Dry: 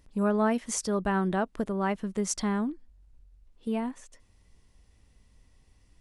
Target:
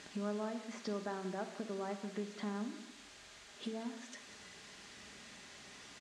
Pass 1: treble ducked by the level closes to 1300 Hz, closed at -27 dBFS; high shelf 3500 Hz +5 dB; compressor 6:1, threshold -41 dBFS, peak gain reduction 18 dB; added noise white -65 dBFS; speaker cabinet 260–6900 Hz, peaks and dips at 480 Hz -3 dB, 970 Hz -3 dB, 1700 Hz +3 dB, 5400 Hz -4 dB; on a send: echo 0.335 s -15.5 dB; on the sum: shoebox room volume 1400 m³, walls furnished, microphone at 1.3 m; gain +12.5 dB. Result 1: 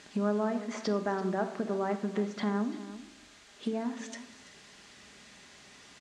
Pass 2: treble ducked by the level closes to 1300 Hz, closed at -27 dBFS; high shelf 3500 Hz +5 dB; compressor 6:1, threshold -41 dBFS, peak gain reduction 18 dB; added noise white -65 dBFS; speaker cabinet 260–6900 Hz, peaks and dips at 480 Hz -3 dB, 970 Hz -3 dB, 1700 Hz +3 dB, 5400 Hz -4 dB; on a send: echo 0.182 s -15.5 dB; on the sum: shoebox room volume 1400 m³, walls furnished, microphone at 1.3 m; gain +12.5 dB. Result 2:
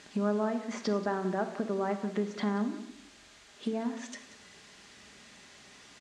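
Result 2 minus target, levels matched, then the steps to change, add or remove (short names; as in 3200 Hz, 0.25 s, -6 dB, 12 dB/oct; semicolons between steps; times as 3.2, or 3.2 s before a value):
compressor: peak gain reduction -9.5 dB
change: compressor 6:1, threshold -52.5 dBFS, peak gain reduction 27.5 dB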